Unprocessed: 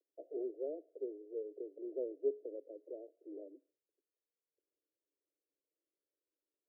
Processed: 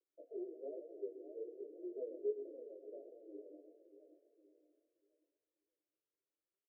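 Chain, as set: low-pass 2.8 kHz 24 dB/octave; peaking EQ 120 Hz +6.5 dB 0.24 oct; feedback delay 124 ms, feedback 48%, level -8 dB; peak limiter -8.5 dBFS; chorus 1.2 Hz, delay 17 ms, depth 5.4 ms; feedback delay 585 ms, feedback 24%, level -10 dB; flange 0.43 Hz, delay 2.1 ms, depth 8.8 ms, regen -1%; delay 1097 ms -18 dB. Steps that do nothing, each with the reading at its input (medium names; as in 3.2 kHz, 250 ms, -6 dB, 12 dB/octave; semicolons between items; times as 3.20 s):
low-pass 2.8 kHz: input has nothing above 680 Hz; peaking EQ 120 Hz: input has nothing below 250 Hz; peak limiter -8.5 dBFS: peak at its input -24.5 dBFS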